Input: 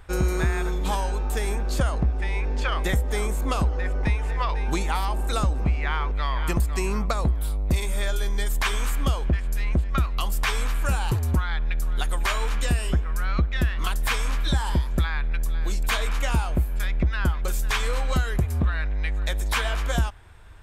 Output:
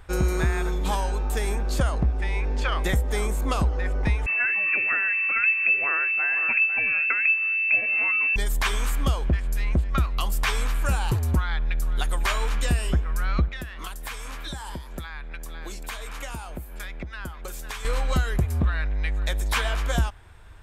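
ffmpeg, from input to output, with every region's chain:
-filter_complex "[0:a]asettb=1/sr,asplit=3[a][b][c];[a]atrim=end=4.264[d];[b]atrim=start=4.26:end=8.36,asetpts=PTS-STARTPTS,afade=t=in:d=0.004:c=qsin,afade=t=out:st=4.096:d=0.004:c=qsin,lowpass=f=2.3k:t=q:w=0.5098,lowpass=f=2.3k:t=q:w=0.6013,lowpass=f=2.3k:t=q:w=0.9,lowpass=f=2.3k:t=q:w=2.563,afreqshift=-2700,bandreject=f=880:w=7.2[e];[c]atrim=start=8.356[f];[d][e]acrossfade=d=0.004:c1=hsin:c2=qsin[g];[g][f]acrossfade=d=0.004:c1=qsin:c2=hsin,asettb=1/sr,asplit=3[h][i][j];[h]atrim=end=13.484[k];[i]atrim=start=13.48:end=17.85,asetpts=PTS-STARTPTS,afade=t=in:d=0.004:c=qsin,afade=t=out:st=4.366:d=0.004:c=qsin,acrossover=split=190|6600[l][m][n];[l]acompressor=threshold=-34dB:ratio=4[o];[m]acompressor=threshold=-36dB:ratio=4[p];[n]acompressor=threshold=-40dB:ratio=4[q];[o][p][q]amix=inputs=3:normalize=0,bass=f=250:g=-3,treble=f=4k:g=-2[r];[j]atrim=start=17.846[s];[k][r]acrossfade=d=0.004:c1=hsin:c2=qsin[t];[t][s]acrossfade=d=0.004:c1=qsin:c2=hsin"

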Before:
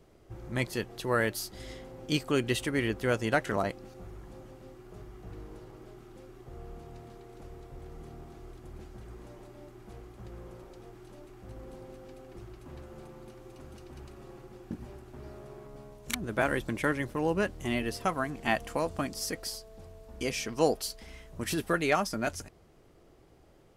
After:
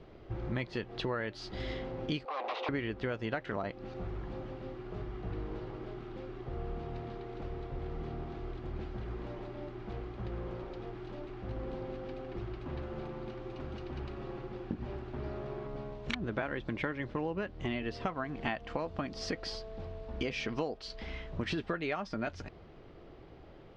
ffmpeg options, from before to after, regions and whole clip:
-filter_complex "[0:a]asettb=1/sr,asplit=3[a][b][c];[a]atrim=end=2.254[d];[b]atrim=start=2.25:end=2.69,asetpts=PTS-STARTPTS,afade=t=in:d=0.004:c=qsin,afade=t=out:st=0.436:d=0.004:c=qsin,acompressor=threshold=-29dB:ratio=4:attack=3.2:release=140:knee=1:detection=peak,aeval=exprs='0.0168*(abs(mod(val(0)/0.0168+3,4)-2)-1)':c=same,highpass=f=400:w=0.5412,highpass=f=400:w=1.3066,equalizer=f=510:t=q:w=4:g=7,equalizer=f=770:t=q:w=4:g=10,equalizer=f=1.1k:t=q:w=4:g=5,equalizer=f=1.7k:t=q:w=4:g=-4,equalizer=f=3.1k:t=q:w=4:g=-5,equalizer=f=4.6k:t=q:w=4:g=-4,lowpass=f=5.1k:w=0.5412,lowpass=f=5.1k:w=1.3066[e];[c]atrim=start=2.686[f];[d][e]acrossfade=d=0.004:c1=hsin:c2=qsin[g];[g][f]acrossfade=d=0.004:c1=qsin:c2=hsin,lowpass=f=4.1k:w=0.5412,lowpass=f=4.1k:w=1.3066,acompressor=threshold=-38dB:ratio=10,volume=6.5dB"

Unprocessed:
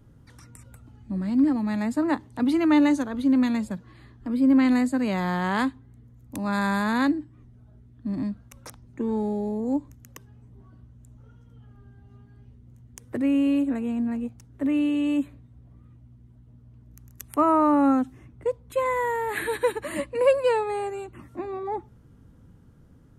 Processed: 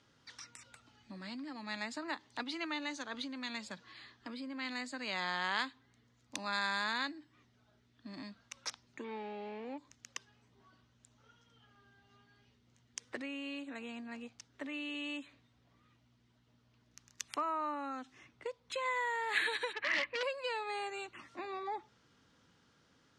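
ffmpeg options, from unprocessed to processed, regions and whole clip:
-filter_complex "[0:a]asettb=1/sr,asplit=3[a][b][c];[a]atrim=end=9.044[d];[b]atrim=start=9.04:end=9.78,asetpts=PTS-STARTPTS,afade=t=in:d=0.004:c=qsin,afade=t=out:st=0.736:d=0.004:c=qsin,lowshelf=f=81:g=-9,aeval=exprs='sgn(val(0))*max(abs(val(0))-0.00168,0)':c=same,lowpass=f=2.4k:t=q:w=3.6[e];[c]atrim=start=9.776[f];[d][e]acrossfade=d=0.004:c1=hsin:c2=qsin[g];[g][f]acrossfade=d=0.004:c1=qsin:c2=hsin,asettb=1/sr,asplit=3[h][i][j];[h]atrim=end=19.734[k];[i]atrim=start=19.73:end=20.23,asetpts=PTS-STARTPTS,afade=t=in:d=0.004:c=qsin,afade=t=out:st=0.496:d=0.004:c=qsin,lowpass=f=2.1k:t=q:w=2.2,volume=26dB,asoftclip=hard,volume=-26dB[l];[j]atrim=start=20.226[m];[k][l]acrossfade=d=0.004:c1=hsin:c2=qsin[n];[n][m]acrossfade=d=0.004:c1=qsin:c2=hsin,acompressor=threshold=-29dB:ratio=6,lowpass=f=5.1k:w=0.5412,lowpass=f=5.1k:w=1.3066,aderivative,volume=14dB"

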